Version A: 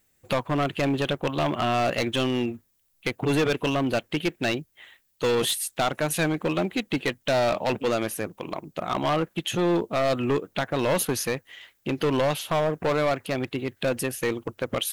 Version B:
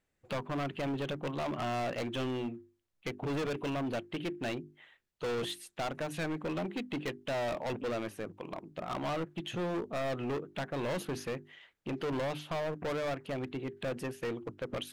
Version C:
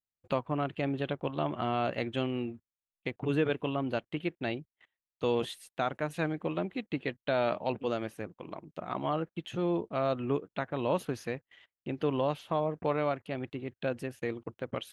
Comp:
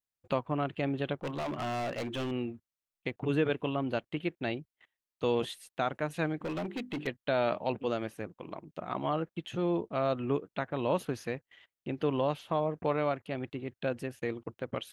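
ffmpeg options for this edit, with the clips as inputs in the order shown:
-filter_complex "[1:a]asplit=2[a][b];[2:a]asplit=3[c][d][e];[c]atrim=end=1.222[f];[a]atrim=start=1.218:end=2.312[g];[d]atrim=start=2.308:end=6.412[h];[b]atrim=start=6.408:end=7.072[i];[e]atrim=start=7.068[j];[f][g]acrossfade=d=0.004:c1=hsin:c2=hsin[k];[k][h]acrossfade=d=0.004:c1=hsin:c2=hsin[l];[l][i]acrossfade=d=0.004:c1=hsin:c2=hsin[m];[m][j]acrossfade=d=0.004:c1=hsin:c2=hsin"

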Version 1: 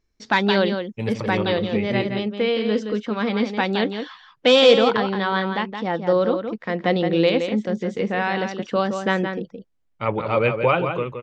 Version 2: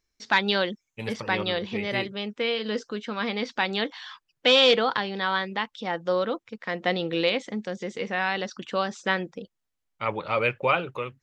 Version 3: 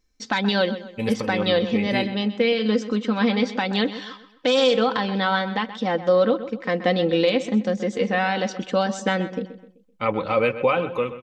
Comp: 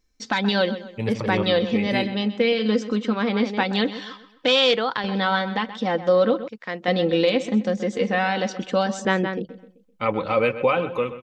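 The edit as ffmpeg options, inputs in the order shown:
-filter_complex "[0:a]asplit=3[a][b][c];[1:a]asplit=2[d][e];[2:a]asplit=6[f][g][h][i][j][k];[f]atrim=end=0.982[l];[a]atrim=start=0.978:end=1.432[m];[g]atrim=start=1.428:end=3.132[n];[b]atrim=start=3.128:end=3.632[o];[h]atrim=start=3.628:end=4.482[p];[d]atrim=start=4.478:end=5.042[q];[i]atrim=start=5.038:end=6.482[r];[e]atrim=start=6.478:end=6.882[s];[j]atrim=start=6.878:end=9.052[t];[c]atrim=start=9.048:end=9.492[u];[k]atrim=start=9.488[v];[l][m]acrossfade=d=0.004:c1=hsin:c2=hsin[w];[w][n]acrossfade=d=0.004:c1=hsin:c2=hsin[x];[x][o]acrossfade=d=0.004:c1=hsin:c2=hsin[y];[y][p]acrossfade=d=0.004:c1=hsin:c2=hsin[z];[z][q]acrossfade=d=0.004:c1=hsin:c2=hsin[aa];[aa][r]acrossfade=d=0.004:c1=hsin:c2=hsin[ab];[ab][s]acrossfade=d=0.004:c1=hsin:c2=hsin[ac];[ac][t]acrossfade=d=0.004:c1=hsin:c2=hsin[ad];[ad][u]acrossfade=d=0.004:c1=hsin:c2=hsin[ae];[ae][v]acrossfade=d=0.004:c1=hsin:c2=hsin"

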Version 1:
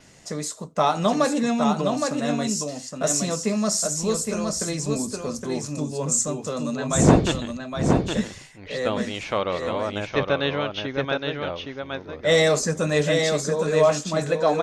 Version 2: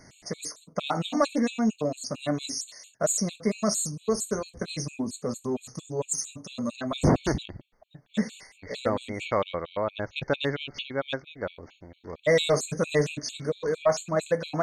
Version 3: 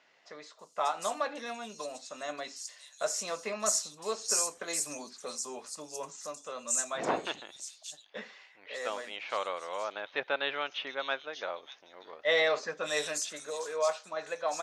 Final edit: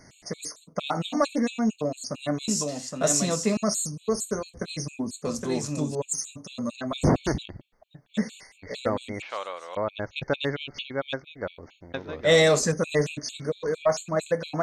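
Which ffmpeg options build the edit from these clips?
-filter_complex "[0:a]asplit=3[a][b][c];[1:a]asplit=5[d][e][f][g][h];[d]atrim=end=2.482[i];[a]atrim=start=2.478:end=3.572[j];[e]atrim=start=3.568:end=5.252[k];[b]atrim=start=5.248:end=5.952[l];[f]atrim=start=5.948:end=9.222[m];[2:a]atrim=start=9.218:end=9.752[n];[g]atrim=start=9.748:end=11.942[o];[c]atrim=start=11.938:end=12.722[p];[h]atrim=start=12.718[q];[i][j]acrossfade=d=0.004:c1=hsin:c2=hsin[r];[r][k]acrossfade=d=0.004:c1=hsin:c2=hsin[s];[s][l]acrossfade=d=0.004:c1=hsin:c2=hsin[t];[t][m]acrossfade=d=0.004:c1=hsin:c2=hsin[u];[u][n]acrossfade=d=0.004:c1=hsin:c2=hsin[v];[v][o]acrossfade=d=0.004:c1=hsin:c2=hsin[w];[w][p]acrossfade=d=0.004:c1=hsin:c2=hsin[x];[x][q]acrossfade=d=0.004:c1=hsin:c2=hsin"

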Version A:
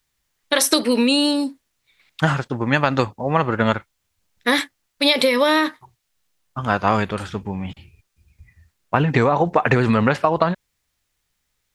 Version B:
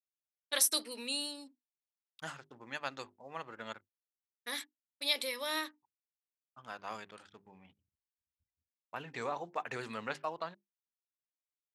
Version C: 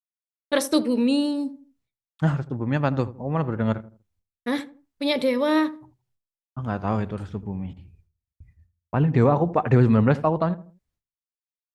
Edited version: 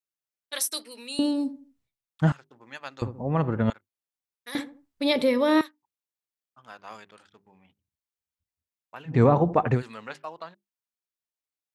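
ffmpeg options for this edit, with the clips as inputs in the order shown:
-filter_complex "[2:a]asplit=4[a][b][c][d];[1:a]asplit=5[e][f][g][h][i];[e]atrim=end=1.192[j];[a]atrim=start=1.188:end=2.322[k];[f]atrim=start=2.318:end=3.022[l];[b]atrim=start=3.018:end=3.702[m];[g]atrim=start=3.698:end=4.552[n];[c]atrim=start=4.548:end=5.612[o];[h]atrim=start=5.608:end=9.21[p];[d]atrim=start=9.05:end=9.83[q];[i]atrim=start=9.67[r];[j][k]acrossfade=d=0.004:c1=hsin:c2=hsin[s];[s][l]acrossfade=d=0.004:c1=hsin:c2=hsin[t];[t][m]acrossfade=d=0.004:c1=hsin:c2=hsin[u];[u][n]acrossfade=d=0.004:c1=hsin:c2=hsin[v];[v][o]acrossfade=d=0.004:c1=hsin:c2=hsin[w];[w][p]acrossfade=d=0.004:c1=hsin:c2=hsin[x];[x][q]acrossfade=d=0.16:c1=tri:c2=tri[y];[y][r]acrossfade=d=0.16:c1=tri:c2=tri"

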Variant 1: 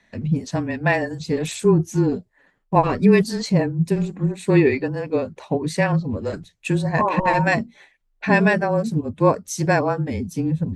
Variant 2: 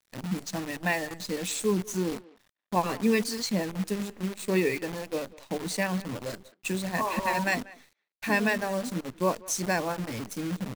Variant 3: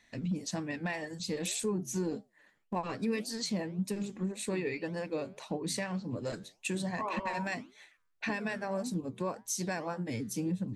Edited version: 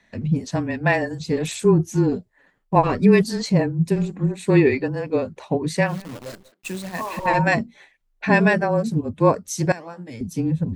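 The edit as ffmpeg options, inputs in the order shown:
-filter_complex "[0:a]asplit=3[a][b][c];[a]atrim=end=5.99[d];[1:a]atrim=start=5.83:end=7.31[e];[b]atrim=start=7.15:end=9.722[f];[2:a]atrim=start=9.718:end=10.212[g];[c]atrim=start=10.208[h];[d][e]acrossfade=d=0.16:c1=tri:c2=tri[i];[i][f]acrossfade=d=0.16:c1=tri:c2=tri[j];[j][g]acrossfade=d=0.004:c1=hsin:c2=hsin[k];[k][h]acrossfade=d=0.004:c1=hsin:c2=hsin"

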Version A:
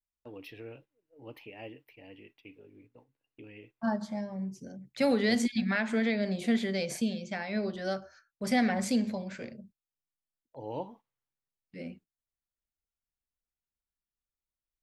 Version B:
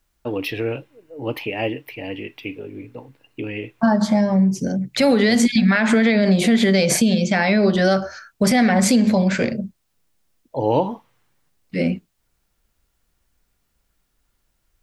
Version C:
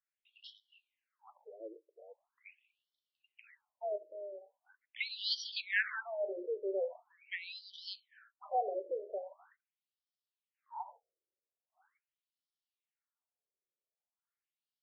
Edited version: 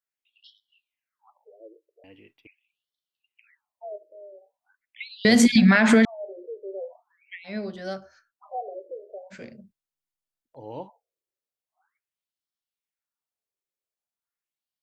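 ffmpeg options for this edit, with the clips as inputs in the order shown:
-filter_complex "[0:a]asplit=3[a][b][c];[2:a]asplit=5[d][e][f][g][h];[d]atrim=end=2.042[i];[a]atrim=start=2.038:end=2.472[j];[e]atrim=start=2.468:end=5.252[k];[1:a]atrim=start=5.248:end=6.052[l];[f]atrim=start=6.048:end=7.5[m];[b]atrim=start=7.44:end=8.34[n];[g]atrim=start=8.28:end=9.34[o];[c]atrim=start=9.3:end=10.9[p];[h]atrim=start=10.86[q];[i][j]acrossfade=d=0.004:c1=hsin:c2=hsin[r];[r][k]acrossfade=d=0.004:c1=hsin:c2=hsin[s];[s][l]acrossfade=d=0.004:c1=hsin:c2=hsin[t];[t][m]acrossfade=d=0.004:c1=hsin:c2=hsin[u];[u][n]acrossfade=d=0.06:c1=tri:c2=tri[v];[v][o]acrossfade=d=0.06:c1=tri:c2=tri[w];[w][p]acrossfade=d=0.04:c1=tri:c2=tri[x];[x][q]acrossfade=d=0.04:c1=tri:c2=tri"

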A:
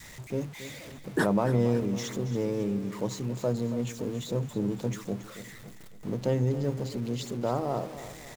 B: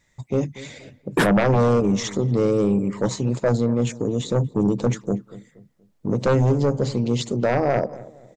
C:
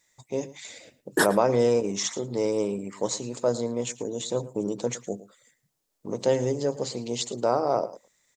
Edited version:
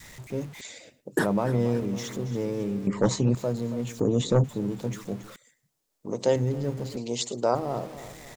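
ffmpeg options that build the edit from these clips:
-filter_complex "[2:a]asplit=3[a][b][c];[1:a]asplit=2[d][e];[0:a]asplit=6[f][g][h][i][j][k];[f]atrim=end=0.612[l];[a]atrim=start=0.608:end=1.192[m];[g]atrim=start=1.188:end=2.872[n];[d]atrim=start=2.868:end=3.352[o];[h]atrim=start=3.348:end=4.002[p];[e]atrim=start=3.998:end=4.442[q];[i]atrim=start=4.438:end=5.362[r];[b]atrim=start=5.358:end=6.362[s];[j]atrim=start=6.358:end=6.972[t];[c]atrim=start=6.968:end=7.552[u];[k]atrim=start=7.548[v];[l][m]acrossfade=d=0.004:c1=hsin:c2=hsin[w];[w][n]acrossfade=d=0.004:c1=hsin:c2=hsin[x];[x][o]acrossfade=d=0.004:c1=hsin:c2=hsin[y];[y][p]acrossfade=d=0.004:c1=hsin:c2=hsin[z];[z][q]acrossfade=d=0.004:c1=hsin:c2=hsin[aa];[aa][r]acrossfade=d=0.004:c1=hsin:c2=hsin[ab];[ab][s]acrossfade=d=0.004:c1=hsin:c2=hsin[ac];[ac][t]acrossfade=d=0.004:c1=hsin:c2=hsin[ad];[ad][u]acrossfade=d=0.004:c1=hsin:c2=hsin[ae];[ae][v]acrossfade=d=0.004:c1=hsin:c2=hsin"

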